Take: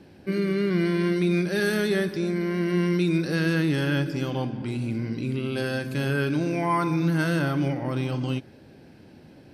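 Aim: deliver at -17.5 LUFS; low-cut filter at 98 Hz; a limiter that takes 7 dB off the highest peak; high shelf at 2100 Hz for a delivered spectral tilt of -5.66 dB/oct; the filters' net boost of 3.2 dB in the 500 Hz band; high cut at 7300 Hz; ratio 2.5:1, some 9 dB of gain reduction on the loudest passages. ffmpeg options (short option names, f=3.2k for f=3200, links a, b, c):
-af "highpass=98,lowpass=7.3k,equalizer=f=500:t=o:g=4.5,highshelf=f=2.1k:g=4,acompressor=threshold=-32dB:ratio=2.5,volume=17.5dB,alimiter=limit=-8.5dB:level=0:latency=1"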